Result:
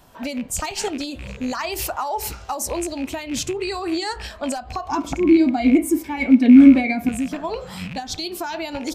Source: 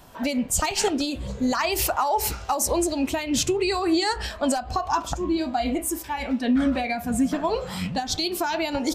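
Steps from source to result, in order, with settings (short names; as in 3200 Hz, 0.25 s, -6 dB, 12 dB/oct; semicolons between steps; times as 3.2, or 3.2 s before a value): rattling part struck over -30 dBFS, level -23 dBFS; 4.89–7.09 small resonant body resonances 280/2200 Hz, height 17 dB, ringing for 30 ms; gain -2.5 dB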